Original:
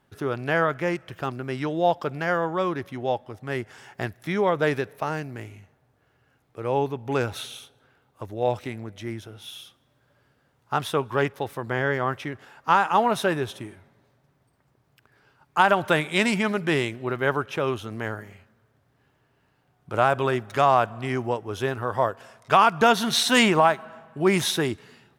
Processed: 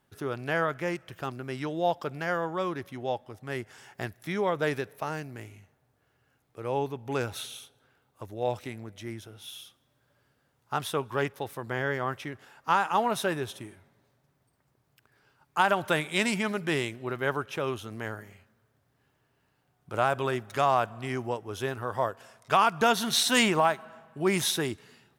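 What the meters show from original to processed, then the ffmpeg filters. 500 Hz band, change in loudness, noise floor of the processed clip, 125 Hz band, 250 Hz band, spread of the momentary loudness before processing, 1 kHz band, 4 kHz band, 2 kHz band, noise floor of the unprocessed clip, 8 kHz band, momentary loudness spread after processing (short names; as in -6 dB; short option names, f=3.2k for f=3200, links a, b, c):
-5.5 dB, -5.0 dB, -72 dBFS, -5.5 dB, -5.5 dB, 17 LU, -5.5 dB, -3.0 dB, -4.5 dB, -67 dBFS, -0.5 dB, 17 LU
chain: -af "highshelf=f=5.1k:g=7,volume=-5.5dB"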